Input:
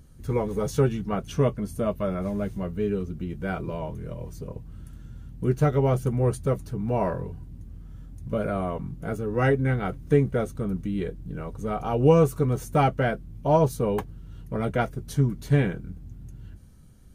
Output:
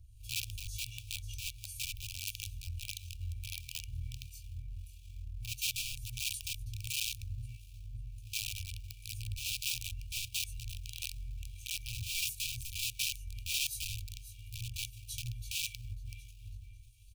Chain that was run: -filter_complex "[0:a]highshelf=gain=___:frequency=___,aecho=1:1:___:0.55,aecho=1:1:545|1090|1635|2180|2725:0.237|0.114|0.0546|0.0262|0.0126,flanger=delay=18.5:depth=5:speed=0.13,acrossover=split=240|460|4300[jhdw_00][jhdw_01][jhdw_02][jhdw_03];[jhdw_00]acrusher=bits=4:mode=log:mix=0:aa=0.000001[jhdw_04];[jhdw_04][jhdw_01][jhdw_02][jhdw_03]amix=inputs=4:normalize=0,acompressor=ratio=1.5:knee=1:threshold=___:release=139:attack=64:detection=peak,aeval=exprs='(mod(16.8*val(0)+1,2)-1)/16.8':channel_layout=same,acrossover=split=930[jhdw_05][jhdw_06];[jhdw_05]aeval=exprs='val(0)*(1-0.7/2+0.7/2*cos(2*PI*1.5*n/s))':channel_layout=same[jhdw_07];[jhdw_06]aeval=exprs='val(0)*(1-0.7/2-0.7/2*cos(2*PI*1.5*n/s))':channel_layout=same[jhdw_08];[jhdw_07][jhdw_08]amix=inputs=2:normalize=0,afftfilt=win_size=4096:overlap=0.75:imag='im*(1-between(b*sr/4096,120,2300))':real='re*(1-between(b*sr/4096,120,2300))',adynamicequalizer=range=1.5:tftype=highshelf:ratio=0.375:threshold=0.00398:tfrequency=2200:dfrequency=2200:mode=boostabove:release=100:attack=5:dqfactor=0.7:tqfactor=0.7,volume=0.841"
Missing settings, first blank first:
5.5, 11k, 1.8, 0.0178